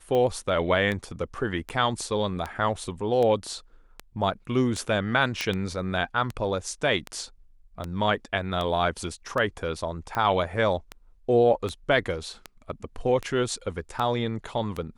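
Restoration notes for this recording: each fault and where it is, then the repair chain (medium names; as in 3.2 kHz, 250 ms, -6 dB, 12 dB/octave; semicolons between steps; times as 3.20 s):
tick 78 rpm -17 dBFS
5.41 s: pop -12 dBFS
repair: de-click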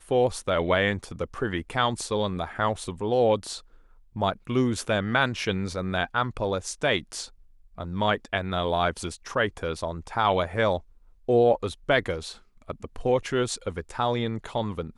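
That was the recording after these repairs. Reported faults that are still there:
nothing left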